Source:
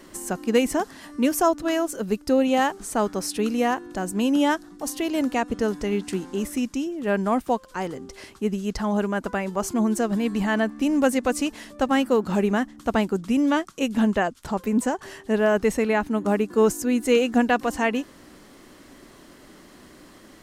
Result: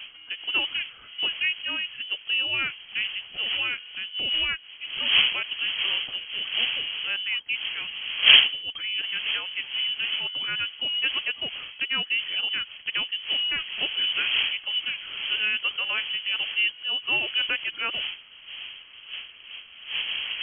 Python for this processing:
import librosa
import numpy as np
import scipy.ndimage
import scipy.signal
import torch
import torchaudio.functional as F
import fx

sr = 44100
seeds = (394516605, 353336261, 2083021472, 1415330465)

y = fx.dmg_wind(x, sr, seeds[0], corner_hz=550.0, level_db=-25.0)
y = fx.freq_invert(y, sr, carrier_hz=3200)
y = F.gain(torch.from_numpy(y), -6.5).numpy()